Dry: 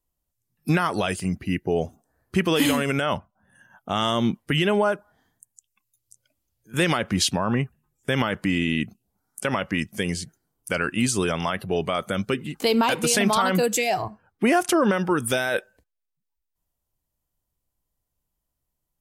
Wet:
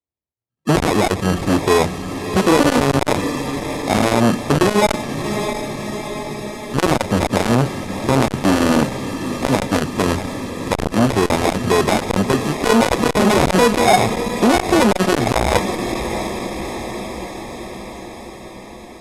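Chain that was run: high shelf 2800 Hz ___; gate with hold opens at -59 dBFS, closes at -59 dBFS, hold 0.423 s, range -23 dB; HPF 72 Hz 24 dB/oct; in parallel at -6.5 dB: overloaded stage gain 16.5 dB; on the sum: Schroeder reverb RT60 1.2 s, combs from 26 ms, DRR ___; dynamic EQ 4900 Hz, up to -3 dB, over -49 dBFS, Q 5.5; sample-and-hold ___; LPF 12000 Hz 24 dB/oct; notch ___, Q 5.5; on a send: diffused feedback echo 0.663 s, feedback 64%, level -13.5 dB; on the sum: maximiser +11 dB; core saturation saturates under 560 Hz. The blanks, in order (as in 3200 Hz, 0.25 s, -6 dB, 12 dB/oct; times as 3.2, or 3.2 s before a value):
-8.5 dB, 19.5 dB, 30×, 170 Hz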